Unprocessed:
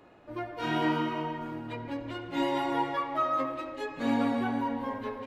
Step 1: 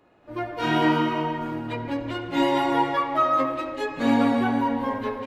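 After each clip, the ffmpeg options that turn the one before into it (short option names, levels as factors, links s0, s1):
-af "dynaudnorm=f=210:g=3:m=3.98,volume=0.596"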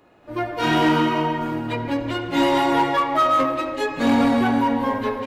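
-filter_complex "[0:a]highshelf=f=5100:g=4.5,asplit=2[s0][s1];[s1]aeval=exprs='0.106*(abs(mod(val(0)/0.106+3,4)-2)-1)':c=same,volume=0.501[s2];[s0][s2]amix=inputs=2:normalize=0,volume=1.12"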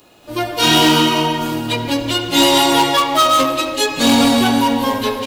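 -af "aexciter=amount=3.3:drive=8.3:freq=2800,volume=1.68"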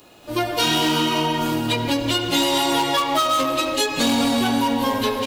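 -af "acompressor=threshold=0.141:ratio=6"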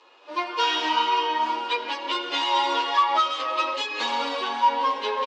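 -filter_complex "[0:a]highpass=f=430:w=0.5412,highpass=f=430:w=1.3066,equalizer=f=660:t=q:w=4:g=-9,equalizer=f=1000:t=q:w=4:g=8,equalizer=f=4000:t=q:w=4:g=-4,lowpass=f=4800:w=0.5412,lowpass=f=4800:w=1.3066,asplit=2[s0][s1];[s1]adelay=8.9,afreqshift=1.9[s2];[s0][s2]amix=inputs=2:normalize=1"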